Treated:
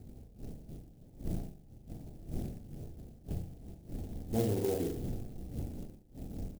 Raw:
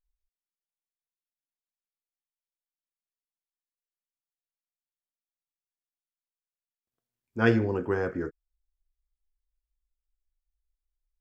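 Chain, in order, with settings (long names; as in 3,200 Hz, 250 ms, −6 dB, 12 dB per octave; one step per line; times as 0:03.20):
wind on the microphone 230 Hz −46 dBFS
low-shelf EQ 81 Hz +6 dB
downward compressor 2.5 to 1, threshold −33 dBFS, peak gain reduction 12 dB
elliptic band-stop filter 790–3,300 Hz, stop band 40 dB
flutter between parallel walls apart 11.5 metres, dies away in 1 s
tempo change 1.7×
converter with an unsteady clock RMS 0.072 ms
level +1.5 dB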